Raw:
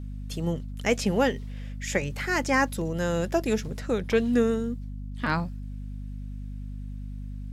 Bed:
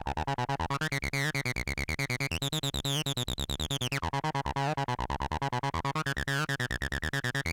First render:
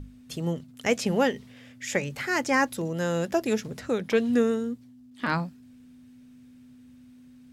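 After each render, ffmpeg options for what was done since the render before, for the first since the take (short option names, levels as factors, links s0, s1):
-af "bandreject=f=50:t=h:w=6,bandreject=f=100:t=h:w=6,bandreject=f=150:t=h:w=6,bandreject=f=200:t=h:w=6"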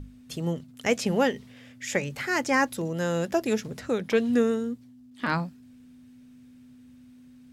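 -af anull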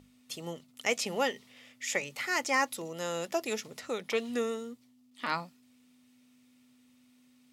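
-af "highpass=f=1000:p=1,bandreject=f=1600:w=5.2"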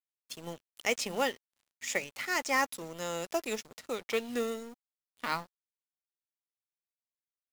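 -af "aeval=exprs='sgn(val(0))*max(abs(val(0))-0.00447,0)':c=same,acrusher=bits=4:mode=log:mix=0:aa=0.000001"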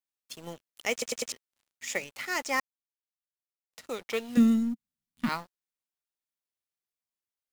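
-filter_complex "[0:a]asettb=1/sr,asplit=3[s0][s1][s2];[s0]atrim=end=4.374[s3];[s1]atrim=start=4.37:end=5.29,asetpts=PTS-STARTPTS,afade=t=in:d=0.004:c=qsin,afade=t=out:st=0.916:d=0.004:c=qsin,lowshelf=f=320:t=q:w=3:g=13[s4];[s2]atrim=start=5.286[s5];[s3][s4]acrossfade=d=0.004:c1=hsin:c2=qsin[s6];[s6][s5]acrossfade=d=0.004:c1=qsin:c2=hsin,asplit=7[s7][s8][s9][s10][s11][s12][s13];[s7]atrim=end=1.022[s14];[s8]atrim=start=0.918:end=1.022[s15];[s9]atrim=start=0.918:end=1.022[s16];[s10]atrim=start=0.918:end=1.022[s17];[s11]atrim=start=1.318:end=2.6,asetpts=PTS-STARTPTS,afade=t=out:st=1.278:d=0.004:c=hsin[s18];[s12]atrim=start=2.6:end=3.73,asetpts=PTS-STARTPTS,volume=0[s19];[s13]atrim=start=3.73,asetpts=PTS-STARTPTS,afade=t=in:d=0.004:c=hsin[s20];[s14][s15]acrossfade=d=0.004:c1=hsin:c2=hsin[s21];[s21][s16]acrossfade=d=0.004:c1=hsin:c2=hsin[s22];[s22][s17]acrossfade=d=0.004:c1=hsin:c2=hsin[s23];[s18][s19][s20]concat=n=3:v=0:a=1[s24];[s23][s24]acrossfade=d=0.004:c1=hsin:c2=hsin"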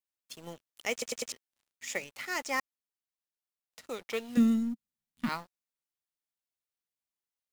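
-af "volume=0.708"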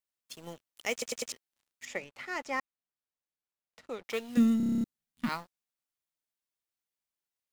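-filter_complex "[0:a]asettb=1/sr,asplit=3[s0][s1][s2];[s0]atrim=end=1.854[s3];[s1]atrim=start=1.85:end=4.04,asetpts=PTS-STARTPTS,afade=t=in:d=0.004:c=qsin,afade=t=out:st=2.186:d=0.004:c=qsin,aemphasis=mode=reproduction:type=75kf[s4];[s2]atrim=start=4.036[s5];[s3][s4]acrossfade=d=0.004:c1=hsin:c2=qsin[s6];[s6][s5]acrossfade=d=0.004:c1=qsin:c2=hsin,asplit=10[s7][s8][s9][s10][s11][s12][s13][s14][s15][s16];[s7]atrim=end=4.602[s17];[s8]atrim=start=4.568:end=4.602[s18];[s9]atrim=start=4.568:end=4.602[s19];[s10]atrim=start=4.568:end=4.602[s20];[s11]atrim=start=4.568:end=4.602[s21];[s12]atrim=start=4.568:end=4.602[s22];[s13]atrim=start=4.568:end=4.602[s23];[s14]atrim=start=4.568:end=4.602[s24];[s15]atrim=start=4.568:end=4.602[s25];[s16]atrim=start=4.838[s26];[s17][s18]acrossfade=d=0.004:c1=hsin:c2=hsin[s27];[s27][s19]acrossfade=d=0.004:c1=hsin:c2=hsin[s28];[s28][s20]acrossfade=d=0.004:c1=hsin:c2=hsin[s29];[s29][s21]acrossfade=d=0.004:c1=hsin:c2=hsin[s30];[s30][s22]acrossfade=d=0.004:c1=hsin:c2=hsin[s31];[s31][s23]acrossfade=d=0.004:c1=hsin:c2=hsin[s32];[s32][s24]acrossfade=d=0.004:c1=hsin:c2=hsin[s33];[s33][s25]acrossfade=d=0.004:c1=hsin:c2=hsin[s34];[s34][s26]acrossfade=d=0.004:c1=hsin:c2=hsin"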